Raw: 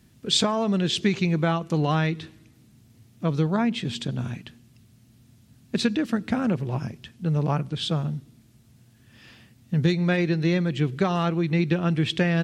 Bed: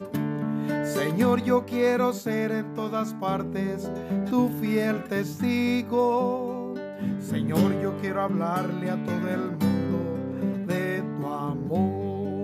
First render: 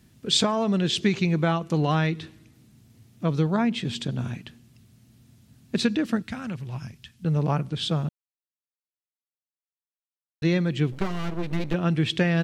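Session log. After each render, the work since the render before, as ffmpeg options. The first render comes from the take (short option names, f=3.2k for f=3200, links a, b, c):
-filter_complex "[0:a]asettb=1/sr,asplit=3[a][b][c];[a]atrim=end=6.224[d];[b]atrim=start=6.22:end=7.25,asetpts=PTS-STARTPTS,afade=t=in:d=0.004:c=qsin,afade=t=out:st=1.026:d=0.004:c=qsin,equalizer=f=430:t=o:w=2.7:g=-14[e];[c]atrim=start=7.246[f];[d][e]acrossfade=d=0.004:c1=hsin:c2=qsin[g];[g][f]acrossfade=d=0.004:c1=qsin:c2=hsin,asettb=1/sr,asplit=3[h][i][j];[h]atrim=end=10.924[k];[i]atrim=start=10.92:end=11.74,asetpts=PTS-STARTPTS,afade=t=in:d=0.004:c=qsin,afade=t=out:st=0.816:d=0.004:c=qsin,aeval=exprs='max(val(0),0)':c=same[l];[j]atrim=start=11.736[m];[k][l]acrossfade=d=0.004:c1=hsin:c2=qsin[n];[n][m]acrossfade=d=0.004:c1=qsin:c2=hsin,asplit=3[o][p][q];[o]atrim=end=8.09,asetpts=PTS-STARTPTS,afade=t=out:st=8.086:d=0.004:c=hsin[r];[p]atrim=start=8.09:end=10.42,asetpts=PTS-STARTPTS,volume=0[s];[q]atrim=start=10.42,asetpts=PTS-STARTPTS,afade=t=in:d=0.004:c=hsin[t];[r][s][t]concat=n=3:v=0:a=1"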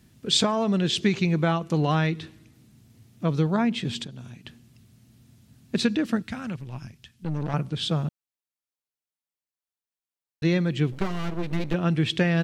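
-filter_complex "[0:a]asettb=1/sr,asplit=3[a][b][c];[a]atrim=end=4.044[d];[b]atrim=start=4.04:end=4.45,asetpts=PTS-STARTPTS,afade=t=in:d=0.004:c=qsin,afade=t=out:st=0.406:d=0.004:c=qsin,acrossover=split=790|3000[e][f][g];[e]acompressor=threshold=-40dB:ratio=4[h];[f]acompressor=threshold=-59dB:ratio=4[i];[g]acompressor=threshold=-58dB:ratio=4[j];[h][i][j]amix=inputs=3:normalize=0[k];[c]atrim=start=4.446[l];[d][k]acrossfade=d=0.004:c1=hsin:c2=qsin[m];[m][l]acrossfade=d=0.004:c1=qsin:c2=hsin,asettb=1/sr,asplit=3[n][o][p];[n]atrim=end=6.564[q];[o]atrim=start=6.56:end=7.54,asetpts=PTS-STARTPTS,afade=t=in:d=0.004:c=qsin,afade=t=out:st=0.976:d=0.004:c=qsin,aeval=exprs='(tanh(17.8*val(0)+0.65)-tanh(0.65))/17.8':c=same[r];[p]atrim=start=7.536[s];[q][r]acrossfade=d=0.004:c1=hsin:c2=qsin[t];[t][s]acrossfade=d=0.004:c1=qsin:c2=hsin"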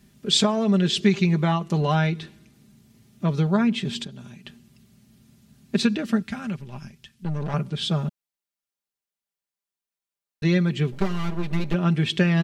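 -af "aecho=1:1:5:0.61"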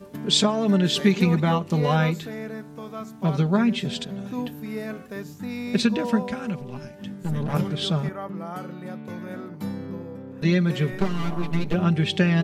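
-filter_complex "[1:a]volume=-7.5dB[a];[0:a][a]amix=inputs=2:normalize=0"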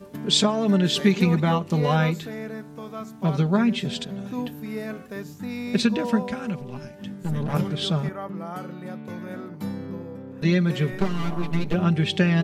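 -af anull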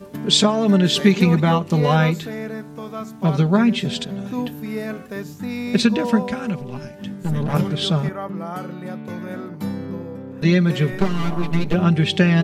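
-af "volume=4.5dB,alimiter=limit=-3dB:level=0:latency=1"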